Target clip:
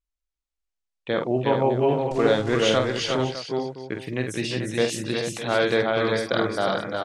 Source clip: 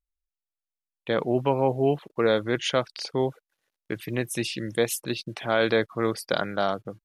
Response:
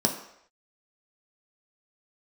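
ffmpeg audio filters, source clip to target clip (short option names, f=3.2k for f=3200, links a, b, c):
-filter_complex "[0:a]asettb=1/sr,asplit=3[a][b][c];[a]atrim=end=2.114[d];[b]atrim=start=2.11:end=2.78,asetpts=PTS-STARTPTS,afade=t=in:d=0.004:c=qsin,afade=t=out:st=0.666:d=0.004:c=qsin,aeval=exprs='val(0)+0.5*0.0266*sgn(val(0))':c=same[e];[c]atrim=start=2.776[f];[d][e]acrossfade=d=0.004:c1=hsin:c2=qsin[g];[g][f]acrossfade=d=0.004:c1=qsin:c2=hsin,lowpass=f=8.4k:w=0.5412,lowpass=f=8.4k:w=1.3066,aecho=1:1:47|344|362|435|607|790:0.473|0.282|0.631|0.422|0.211|0.119"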